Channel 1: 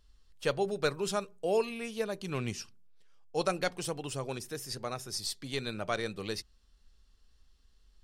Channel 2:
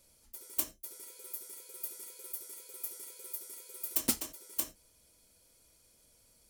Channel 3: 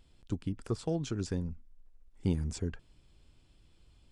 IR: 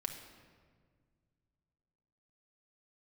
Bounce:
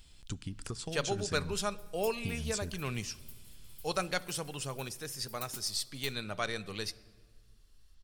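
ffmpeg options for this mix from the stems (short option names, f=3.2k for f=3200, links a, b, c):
-filter_complex "[0:a]adelay=500,volume=-0.5dB,asplit=2[a][b];[b]volume=-10.5dB[c];[1:a]adelay=1450,volume=-13.5dB[d];[2:a]highshelf=f=2.4k:g=9.5,acompressor=threshold=-37dB:ratio=6,volume=3dB,asplit=2[e][f];[f]volume=-12.5dB[g];[3:a]atrim=start_sample=2205[h];[c][g]amix=inputs=2:normalize=0[i];[i][h]afir=irnorm=-1:irlink=0[j];[a][d][e][j]amix=inputs=4:normalize=0,equalizer=f=380:t=o:w=2.5:g=-6.5"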